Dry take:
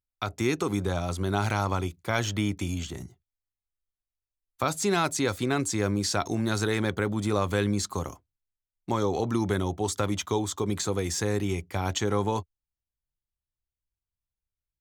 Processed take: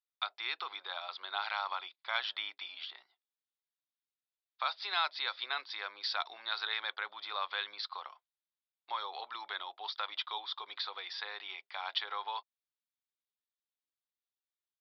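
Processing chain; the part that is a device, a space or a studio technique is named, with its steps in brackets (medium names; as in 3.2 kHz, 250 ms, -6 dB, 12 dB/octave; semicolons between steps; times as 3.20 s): musical greeting card (resampled via 11.025 kHz; high-pass 850 Hz 24 dB/octave; peaking EQ 3.6 kHz +8 dB 0.3 oct); trim -4.5 dB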